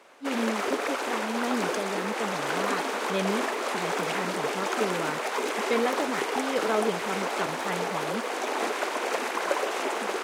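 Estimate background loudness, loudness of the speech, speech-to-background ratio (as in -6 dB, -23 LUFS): -29.5 LUFS, -33.5 LUFS, -4.0 dB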